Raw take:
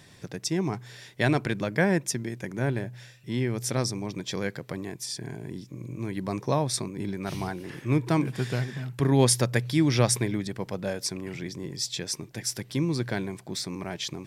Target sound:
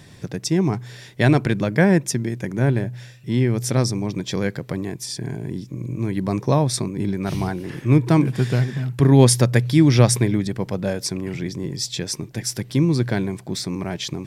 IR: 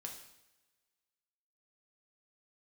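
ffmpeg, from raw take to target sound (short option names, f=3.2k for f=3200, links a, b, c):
-af "lowshelf=f=370:g=6.5,volume=4dB"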